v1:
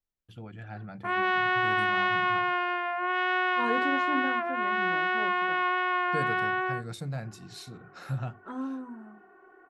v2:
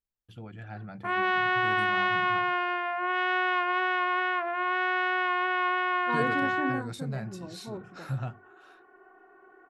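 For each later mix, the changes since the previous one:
second voice: entry +2.50 s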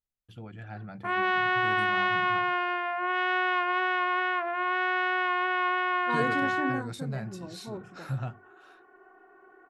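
second voice: add treble shelf 4.2 kHz +10 dB

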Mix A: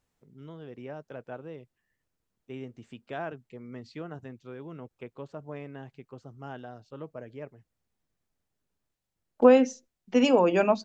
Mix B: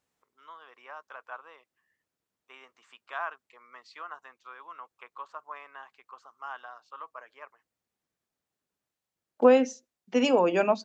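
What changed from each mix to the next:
first voice: add resonant high-pass 1.1 kHz, resonance Q 5.4; master: add high-pass 270 Hz 6 dB/octave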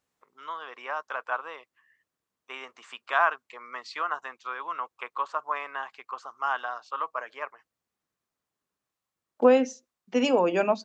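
first voice +11.5 dB

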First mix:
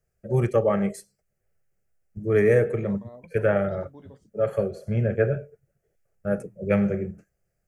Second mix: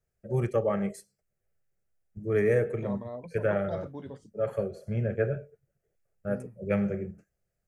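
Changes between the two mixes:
first voice -5.5 dB; second voice +6.0 dB

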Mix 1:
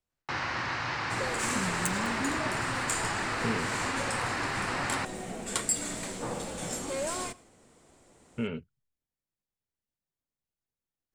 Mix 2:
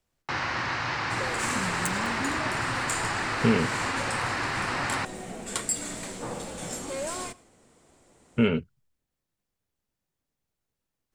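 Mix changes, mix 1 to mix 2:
speech +10.5 dB; first sound +3.0 dB

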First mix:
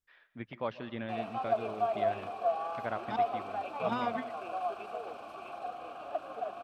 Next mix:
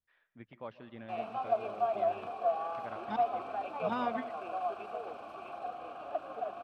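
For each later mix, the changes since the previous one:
first voice -8.5 dB; master: add treble shelf 3.6 kHz -7 dB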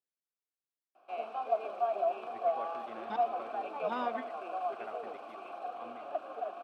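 first voice: entry +1.95 s; master: add Chebyshev high-pass 340 Hz, order 2

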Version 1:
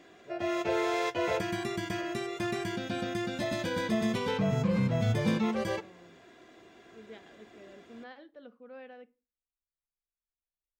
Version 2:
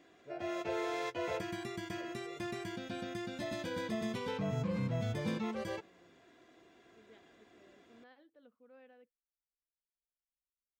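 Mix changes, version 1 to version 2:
second voice -12.0 dB; background -7.0 dB; reverb: off

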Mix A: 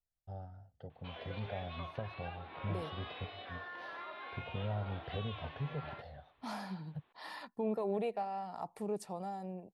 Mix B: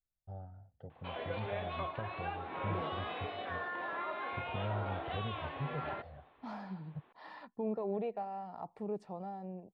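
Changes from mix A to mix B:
background +10.5 dB; master: add tape spacing loss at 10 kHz 28 dB

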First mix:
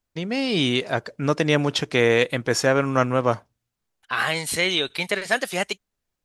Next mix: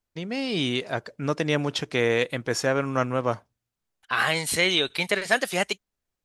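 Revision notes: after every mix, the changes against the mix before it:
first voice -4.5 dB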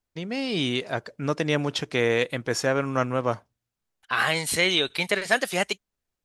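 no change

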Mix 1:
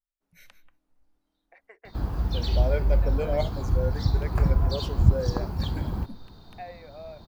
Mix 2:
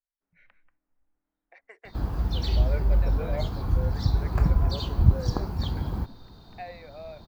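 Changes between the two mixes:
first voice: add treble shelf 3.7 kHz +12 dB; second voice: add four-pole ladder low-pass 2.5 kHz, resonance 35%

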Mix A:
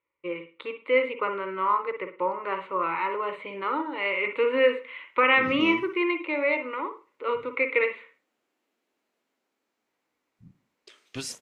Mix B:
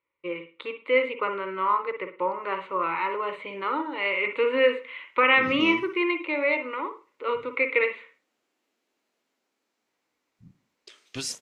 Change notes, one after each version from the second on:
master: add peaking EQ 5.5 kHz +4.5 dB 1.7 oct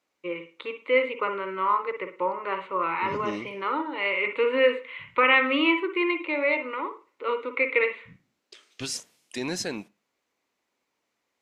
second voice: entry -2.35 s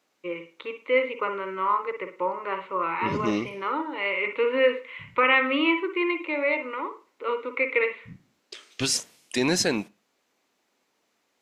first voice: add distance through air 80 m; second voice +7.5 dB

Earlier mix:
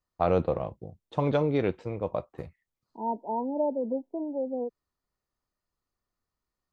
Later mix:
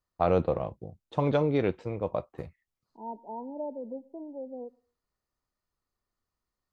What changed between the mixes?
second voice -9.0 dB; reverb: on, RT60 0.35 s

